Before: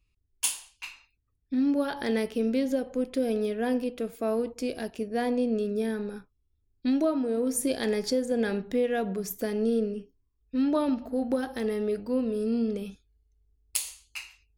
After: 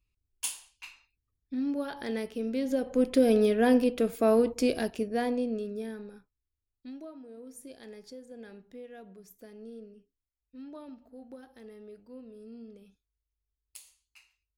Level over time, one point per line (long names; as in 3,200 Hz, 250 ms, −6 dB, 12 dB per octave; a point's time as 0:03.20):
0:02.49 −6 dB
0:03.07 +5 dB
0:04.70 +5 dB
0:05.64 −6.5 dB
0:07.08 −19.5 dB